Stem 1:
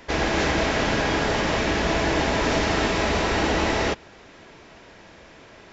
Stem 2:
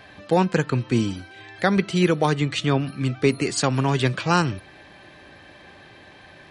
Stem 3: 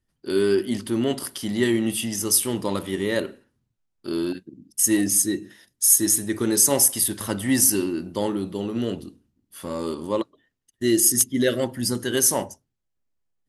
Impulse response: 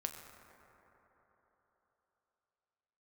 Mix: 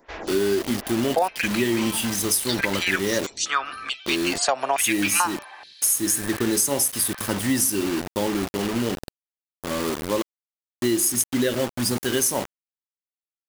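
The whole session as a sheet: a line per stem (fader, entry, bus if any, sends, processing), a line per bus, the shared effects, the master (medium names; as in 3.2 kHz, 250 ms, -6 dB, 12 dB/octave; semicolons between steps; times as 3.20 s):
-7.0 dB, 0.00 s, no send, lamp-driven phase shifter 2.6 Hz; auto duck -18 dB, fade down 1.55 s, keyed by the third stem
+2.0 dB, 0.85 s, no send, step-sequenced high-pass 2.3 Hz 670–5800 Hz
+1.5 dB, 0.00 s, no send, bit crusher 5-bit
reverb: none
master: compression 6:1, threshold -18 dBFS, peak gain reduction 11 dB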